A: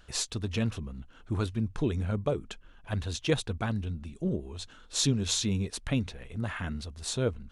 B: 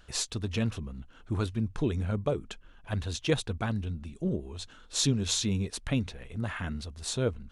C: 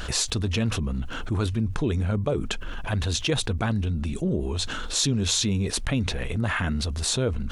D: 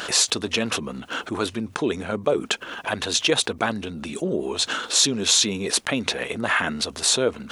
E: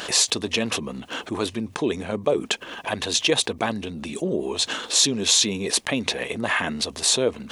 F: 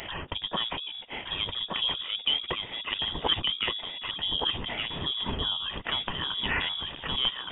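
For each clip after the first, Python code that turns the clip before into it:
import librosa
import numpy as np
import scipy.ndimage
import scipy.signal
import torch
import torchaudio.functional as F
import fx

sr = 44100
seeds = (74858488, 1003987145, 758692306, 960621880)

y1 = x
y2 = fx.env_flatten(y1, sr, amount_pct=70)
y3 = scipy.signal.sosfilt(scipy.signal.butter(2, 330.0, 'highpass', fs=sr, output='sos'), y2)
y3 = y3 * librosa.db_to_amplitude(6.5)
y4 = fx.peak_eq(y3, sr, hz=1400.0, db=-9.5, octaves=0.23)
y5 = scipy.signal.sosfilt(scipy.signal.butter(2, 86.0, 'highpass', fs=sr, output='sos'), y4)
y5 = y5 + 10.0 ** (-3.5 / 20.0) * np.pad(y5, (int(1170 * sr / 1000.0), 0))[:len(y5)]
y5 = fx.freq_invert(y5, sr, carrier_hz=3600)
y5 = y5 * librosa.db_to_amplitude(-6.0)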